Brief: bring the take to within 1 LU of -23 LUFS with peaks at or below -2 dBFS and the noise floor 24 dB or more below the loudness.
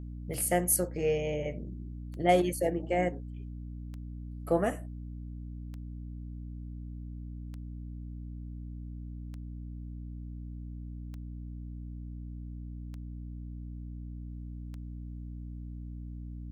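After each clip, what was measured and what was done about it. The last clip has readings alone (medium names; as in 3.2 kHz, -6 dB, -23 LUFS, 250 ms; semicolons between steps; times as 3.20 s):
clicks found 9; hum 60 Hz; highest harmonic 300 Hz; hum level -38 dBFS; loudness -36.0 LUFS; peak level -11.5 dBFS; loudness target -23.0 LUFS
-> de-click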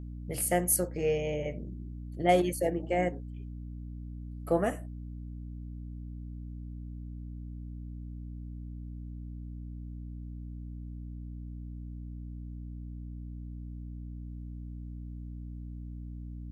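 clicks found 0; hum 60 Hz; highest harmonic 300 Hz; hum level -38 dBFS
-> de-hum 60 Hz, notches 5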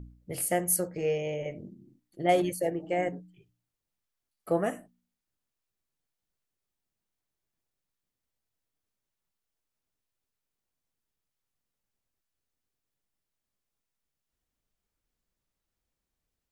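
hum not found; loudness -30.0 LUFS; peak level -12.0 dBFS; loudness target -23.0 LUFS
-> trim +7 dB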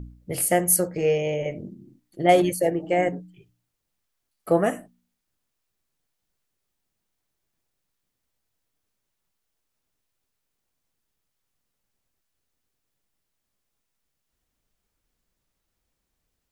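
loudness -23.0 LUFS; peak level -5.0 dBFS; noise floor -80 dBFS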